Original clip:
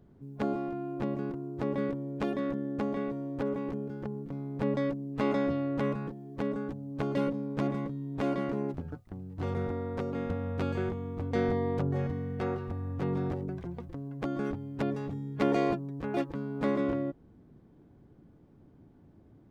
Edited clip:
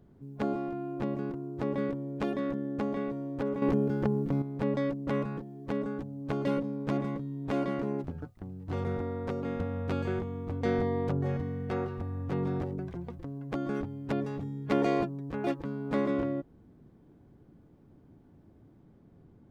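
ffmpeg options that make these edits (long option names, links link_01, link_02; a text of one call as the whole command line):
ffmpeg -i in.wav -filter_complex "[0:a]asplit=4[link_01][link_02][link_03][link_04];[link_01]atrim=end=3.622[link_05];[link_02]atrim=start=3.618:end=4.422,asetpts=PTS-STARTPTS,volume=9dB[link_06];[link_03]atrim=start=4.418:end=5.072[link_07];[link_04]atrim=start=5.768[link_08];[link_05][link_06]acrossfade=duration=0.004:curve1=hsin:curve2=hsin[link_09];[link_09][link_07]acrossfade=duration=0.004:curve1=hsin:curve2=hsin[link_10];[link_10][link_08]acrossfade=duration=0.004:curve1=hsin:curve2=hsin" out.wav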